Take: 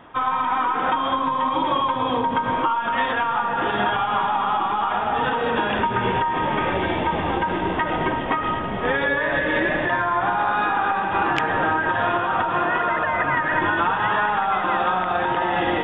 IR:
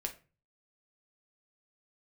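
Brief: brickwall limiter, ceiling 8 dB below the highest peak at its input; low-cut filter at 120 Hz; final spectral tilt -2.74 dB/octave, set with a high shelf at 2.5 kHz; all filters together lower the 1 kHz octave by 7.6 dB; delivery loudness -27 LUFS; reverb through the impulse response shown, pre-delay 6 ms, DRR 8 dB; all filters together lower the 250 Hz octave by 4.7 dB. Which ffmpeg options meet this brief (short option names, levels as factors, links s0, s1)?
-filter_complex "[0:a]highpass=120,equalizer=f=250:t=o:g=-5.5,equalizer=f=1000:t=o:g=-8.5,highshelf=f=2500:g=-4,alimiter=limit=0.126:level=0:latency=1,asplit=2[s0][s1];[1:a]atrim=start_sample=2205,adelay=6[s2];[s1][s2]afir=irnorm=-1:irlink=0,volume=0.398[s3];[s0][s3]amix=inputs=2:normalize=0,volume=1.06"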